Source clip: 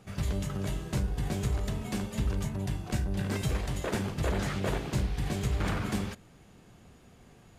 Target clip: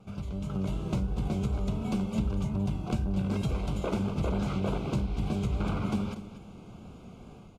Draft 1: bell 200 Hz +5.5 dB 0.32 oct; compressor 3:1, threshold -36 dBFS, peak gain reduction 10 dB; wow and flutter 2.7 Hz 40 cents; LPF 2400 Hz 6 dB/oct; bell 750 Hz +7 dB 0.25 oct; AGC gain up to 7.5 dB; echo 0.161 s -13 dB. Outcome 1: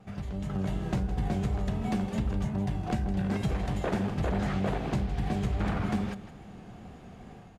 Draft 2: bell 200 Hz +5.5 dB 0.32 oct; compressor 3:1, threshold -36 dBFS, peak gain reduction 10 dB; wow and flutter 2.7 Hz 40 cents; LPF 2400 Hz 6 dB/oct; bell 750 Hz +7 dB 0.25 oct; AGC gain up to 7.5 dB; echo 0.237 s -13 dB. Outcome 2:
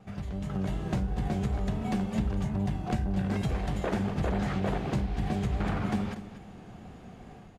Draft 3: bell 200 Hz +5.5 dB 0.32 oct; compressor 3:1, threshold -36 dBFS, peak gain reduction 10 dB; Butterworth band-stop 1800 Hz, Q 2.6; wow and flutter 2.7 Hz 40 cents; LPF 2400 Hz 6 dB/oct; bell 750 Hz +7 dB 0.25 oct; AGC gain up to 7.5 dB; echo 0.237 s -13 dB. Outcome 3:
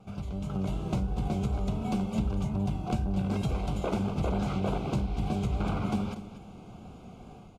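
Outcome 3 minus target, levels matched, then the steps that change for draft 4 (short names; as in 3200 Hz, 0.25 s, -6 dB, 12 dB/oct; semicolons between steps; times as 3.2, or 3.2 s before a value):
1000 Hz band +3.5 dB
remove: second bell 750 Hz +7 dB 0.25 oct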